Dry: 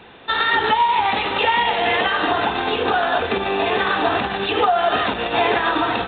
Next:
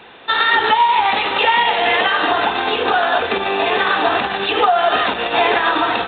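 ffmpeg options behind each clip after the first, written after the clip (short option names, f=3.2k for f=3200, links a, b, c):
-af "lowshelf=f=250:g=-10.5,volume=4dB"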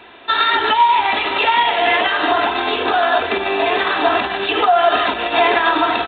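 -af "aecho=1:1:3:0.49,volume=-1dB"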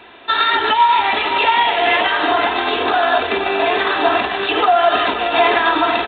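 -af "aecho=1:1:524:0.299"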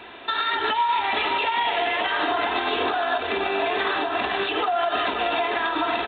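-af "acompressor=threshold=-15dB:ratio=10,alimiter=limit=-14dB:level=0:latency=1:release=341"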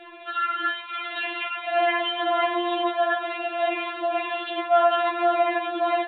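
-af "afftfilt=real='re*4*eq(mod(b,16),0)':imag='im*4*eq(mod(b,16),0)':win_size=2048:overlap=0.75,volume=-2dB"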